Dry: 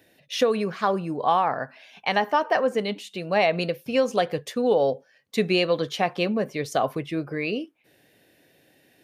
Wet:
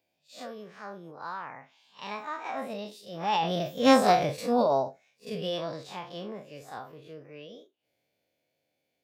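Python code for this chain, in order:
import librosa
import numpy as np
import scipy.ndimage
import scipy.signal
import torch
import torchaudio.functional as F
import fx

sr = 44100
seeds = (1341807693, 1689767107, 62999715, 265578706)

y = fx.spec_blur(x, sr, span_ms=93.0)
y = fx.doppler_pass(y, sr, speed_mps=8, closest_m=2.1, pass_at_s=4.07)
y = fx.formant_shift(y, sr, semitones=4)
y = y * librosa.db_to_amplitude(6.5)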